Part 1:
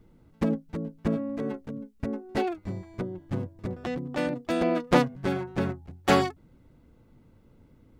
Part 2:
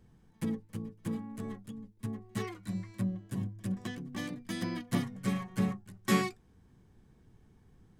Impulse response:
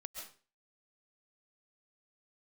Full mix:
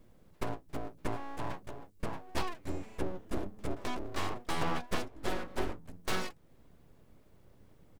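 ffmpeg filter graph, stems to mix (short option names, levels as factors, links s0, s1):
-filter_complex "[0:a]highshelf=f=4800:g=8,aecho=1:1:1.8:0.55,volume=0.668[s0];[1:a]adelay=0.4,volume=0.668[s1];[s0][s1]amix=inputs=2:normalize=0,aeval=exprs='abs(val(0))':c=same,alimiter=limit=0.112:level=0:latency=1:release=420"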